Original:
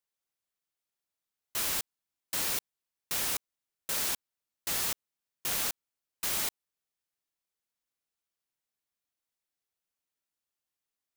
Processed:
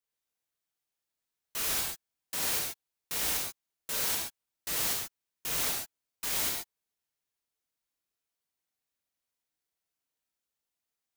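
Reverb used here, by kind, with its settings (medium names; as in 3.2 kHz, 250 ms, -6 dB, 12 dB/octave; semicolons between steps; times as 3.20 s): gated-style reverb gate 160 ms flat, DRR -2.5 dB; trim -3.5 dB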